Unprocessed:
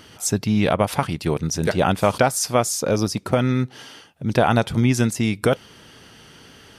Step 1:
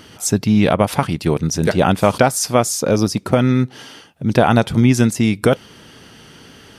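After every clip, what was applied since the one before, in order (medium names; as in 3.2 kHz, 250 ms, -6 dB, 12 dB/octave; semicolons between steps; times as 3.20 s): peaking EQ 230 Hz +3 dB 1.7 oct; trim +3 dB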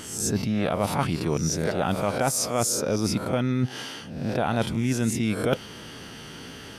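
reverse spectral sustain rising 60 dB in 0.47 s; reverse; compression 10:1, threshold -21 dBFS, peak gain reduction 16 dB; reverse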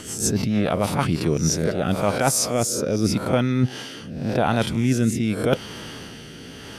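rotary cabinet horn 6.7 Hz, later 0.85 Hz, at 0.84 s; trim +5.5 dB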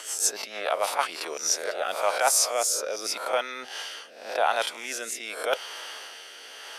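high-pass 590 Hz 24 dB/octave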